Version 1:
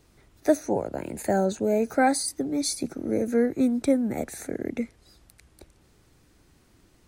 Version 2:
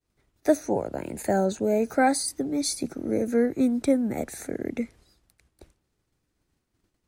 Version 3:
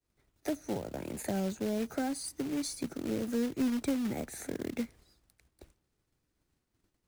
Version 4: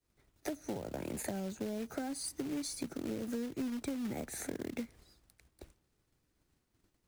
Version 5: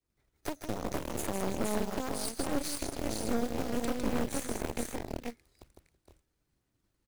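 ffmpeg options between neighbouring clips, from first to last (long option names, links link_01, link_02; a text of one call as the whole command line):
ffmpeg -i in.wav -af "agate=range=-33dB:threshold=-48dB:ratio=3:detection=peak" out.wav
ffmpeg -i in.wav -filter_complex "[0:a]acrossover=split=250[link_01][link_02];[link_02]acompressor=threshold=-31dB:ratio=10[link_03];[link_01][link_03]amix=inputs=2:normalize=0,acrusher=bits=3:mode=log:mix=0:aa=0.000001,volume=-4dB" out.wav
ffmpeg -i in.wav -af "acompressor=threshold=-37dB:ratio=6,volume=2dB" out.wav
ffmpeg -i in.wav -af "aecho=1:1:156|330|465|490:0.562|0.106|0.562|0.562,aphaser=in_gain=1:out_gain=1:delay=2.4:decay=0.22:speed=1.2:type=sinusoidal,aeval=exprs='0.0891*(cos(1*acos(clip(val(0)/0.0891,-1,1)))-cos(1*PI/2))+0.01*(cos(5*acos(clip(val(0)/0.0891,-1,1)))-cos(5*PI/2))+0.0282*(cos(6*acos(clip(val(0)/0.0891,-1,1)))-cos(6*PI/2))+0.0126*(cos(7*acos(clip(val(0)/0.0891,-1,1)))-cos(7*PI/2))':channel_layout=same,volume=-1dB" out.wav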